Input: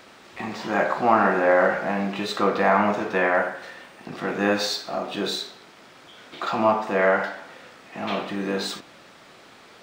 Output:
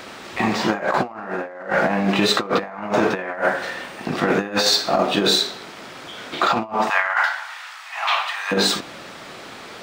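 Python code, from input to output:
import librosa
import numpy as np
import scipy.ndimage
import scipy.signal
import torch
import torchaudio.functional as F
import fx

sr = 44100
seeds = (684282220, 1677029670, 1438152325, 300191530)

y = fx.steep_highpass(x, sr, hz=850.0, slope=36, at=(6.88, 8.51), fade=0.02)
y = fx.over_compress(y, sr, threshold_db=-27.0, ratio=-0.5)
y = y * librosa.db_to_amplitude(7.0)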